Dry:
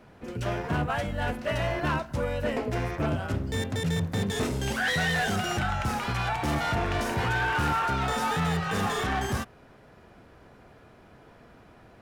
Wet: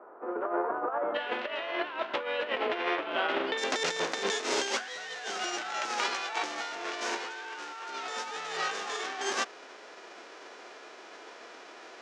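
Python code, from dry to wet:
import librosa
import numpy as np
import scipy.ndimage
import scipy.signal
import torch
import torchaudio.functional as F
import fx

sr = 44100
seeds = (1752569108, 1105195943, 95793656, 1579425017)

y = fx.envelope_flatten(x, sr, power=0.6)
y = fx.ellip_bandpass(y, sr, low_hz=350.0, high_hz=fx.steps((0.0, 1300.0), (1.14, 3300.0), (3.57, 6400.0)), order=3, stop_db=60)
y = fx.over_compress(y, sr, threshold_db=-34.0, ratio=-0.5)
y = y * librosa.db_to_amplitude(2.0)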